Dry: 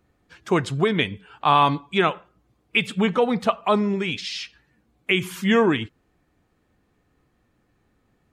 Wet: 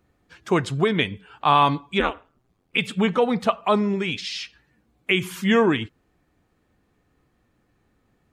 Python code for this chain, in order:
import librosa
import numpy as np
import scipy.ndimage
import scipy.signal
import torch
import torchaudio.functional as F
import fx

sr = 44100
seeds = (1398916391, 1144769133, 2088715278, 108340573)

y = fx.ring_mod(x, sr, carrier_hz=fx.line((1.99, 140.0), (2.77, 35.0)), at=(1.99, 2.77), fade=0.02)